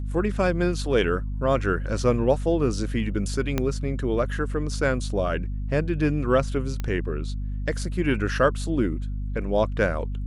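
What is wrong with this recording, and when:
hum 50 Hz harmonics 5 -29 dBFS
3.58 pop -10 dBFS
6.8 pop -16 dBFS

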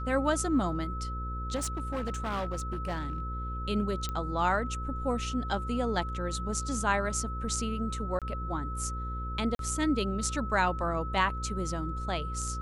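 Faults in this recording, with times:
buzz 60 Hz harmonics 9 -36 dBFS
tone 1300 Hz -38 dBFS
1.55–3.2 clipped -28.5 dBFS
4.09 pop -20 dBFS
8.19–8.22 gap 27 ms
9.55–9.59 gap 42 ms

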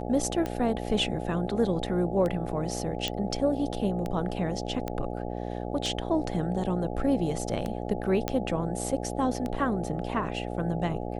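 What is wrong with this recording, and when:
buzz 60 Hz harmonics 14 -34 dBFS
tick 33 1/3 rpm -19 dBFS
3.08 pop -14 dBFS
4.88 pop -18 dBFS
8.28 pop -12 dBFS

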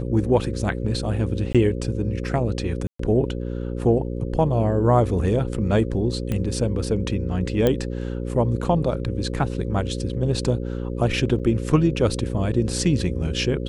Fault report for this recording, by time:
buzz 60 Hz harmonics 9 -28 dBFS
1.53–1.55 gap 16 ms
2.87–2.99 gap 0.124 s
6.32 pop -13 dBFS
7.67 pop -8 dBFS
11.39–11.4 gap 6.6 ms

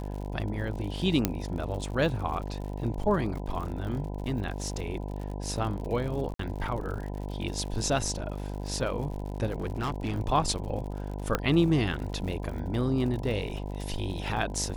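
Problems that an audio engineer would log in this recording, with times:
buzz 50 Hz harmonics 20 -35 dBFS
crackle 80/s -37 dBFS
1.25 pop -8 dBFS
6.34–6.39 gap 53 ms
9.58–10.2 clipped -26.5 dBFS
11.35 pop -11 dBFS

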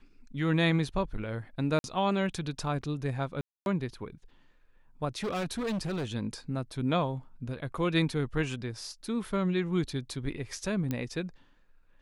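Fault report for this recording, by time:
1.79–1.84 gap 51 ms
3.41–3.66 gap 0.251 s
5.17–6.15 clipped -29 dBFS
10.91 pop -18 dBFS

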